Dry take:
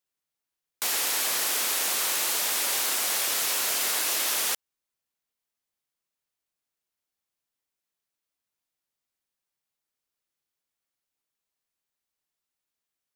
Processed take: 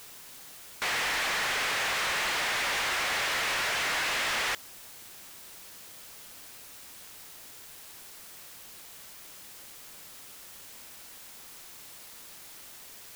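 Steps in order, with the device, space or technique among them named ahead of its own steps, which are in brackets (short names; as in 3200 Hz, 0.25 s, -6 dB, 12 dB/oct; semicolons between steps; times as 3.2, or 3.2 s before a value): drive-through speaker (BPF 460–3000 Hz; bell 1900 Hz +5 dB; hard clip -35 dBFS, distortion -7 dB; white noise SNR 13 dB); gain +7.5 dB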